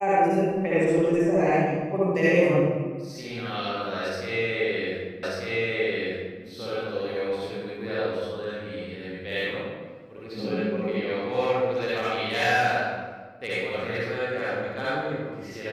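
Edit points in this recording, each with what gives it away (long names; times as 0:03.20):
0:05.23: the same again, the last 1.19 s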